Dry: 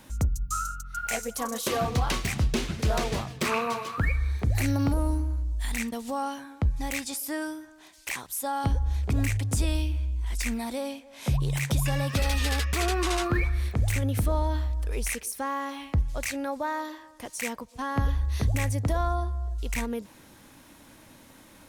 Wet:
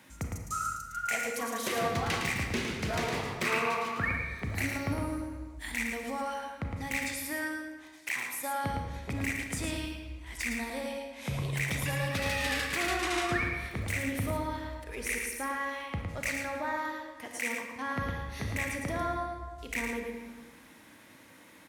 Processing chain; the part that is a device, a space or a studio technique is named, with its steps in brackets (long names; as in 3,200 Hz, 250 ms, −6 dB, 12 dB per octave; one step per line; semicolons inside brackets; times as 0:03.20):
PA in a hall (high-pass filter 110 Hz 12 dB per octave; parametric band 2,000 Hz +8 dB 0.84 octaves; single-tap delay 110 ms −5.5 dB; convolution reverb RT60 1.6 s, pre-delay 30 ms, DRR 4 dB)
level −6.5 dB